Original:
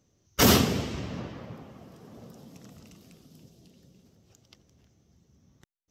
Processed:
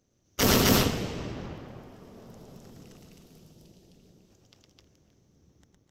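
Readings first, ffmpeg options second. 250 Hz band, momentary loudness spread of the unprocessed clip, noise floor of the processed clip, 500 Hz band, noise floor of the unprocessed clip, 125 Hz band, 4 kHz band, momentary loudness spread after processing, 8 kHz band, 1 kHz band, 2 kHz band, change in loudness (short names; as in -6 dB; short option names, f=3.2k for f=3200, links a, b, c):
-0.5 dB, 22 LU, -69 dBFS, +0.5 dB, -70 dBFS, 0.0 dB, +0.5 dB, 20 LU, 0.0 dB, 0.0 dB, +0.5 dB, 0.0 dB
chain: -filter_complex "[0:a]tremolo=f=210:d=0.889,asplit=2[a][b];[b]aecho=0:1:110.8|259.5:0.708|1[c];[a][c]amix=inputs=2:normalize=0"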